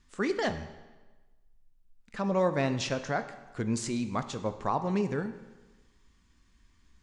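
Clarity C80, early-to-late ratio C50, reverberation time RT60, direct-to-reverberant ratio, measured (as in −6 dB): 13.5 dB, 11.5 dB, 1.2 s, 9.5 dB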